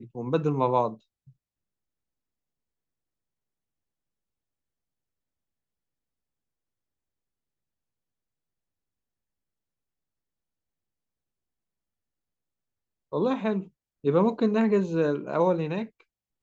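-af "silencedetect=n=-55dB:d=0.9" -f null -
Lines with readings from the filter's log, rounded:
silence_start: 1.32
silence_end: 13.12 | silence_duration: 11.80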